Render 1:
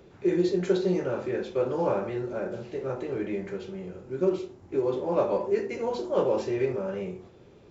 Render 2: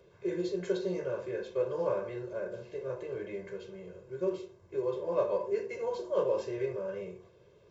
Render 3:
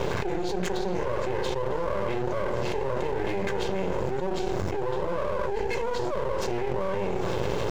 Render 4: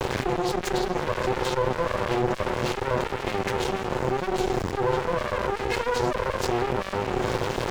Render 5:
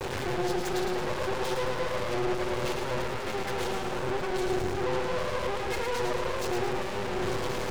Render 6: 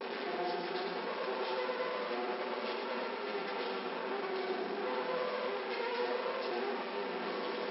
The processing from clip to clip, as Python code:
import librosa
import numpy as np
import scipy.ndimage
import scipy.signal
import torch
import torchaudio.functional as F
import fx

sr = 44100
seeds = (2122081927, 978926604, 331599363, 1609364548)

y1 = fx.low_shelf(x, sr, hz=77.0, db=-9.0)
y1 = y1 + 0.99 * np.pad(y1, (int(1.9 * sr / 1000.0), 0))[:len(y1)]
y1 = y1 * librosa.db_to_amplitude(-9.0)
y2 = np.maximum(y1, 0.0)
y2 = fx.env_flatten(y2, sr, amount_pct=100)
y3 = fx.lower_of_two(y2, sr, delay_ms=8.0)
y3 = y3 * librosa.db_to_amplitude(7.5)
y4 = 10.0 ** (-27.0 / 20.0) * np.tanh(y3 / 10.0 ** (-27.0 / 20.0))
y4 = fx.echo_feedback(y4, sr, ms=110, feedback_pct=54, wet_db=-5.0)
y5 = fx.brickwall_bandpass(y4, sr, low_hz=190.0, high_hz=5500.0)
y5 = fx.room_shoebox(y5, sr, seeds[0], volume_m3=500.0, walls='furnished', distance_m=1.6)
y5 = y5 * librosa.db_to_amplitude(-7.0)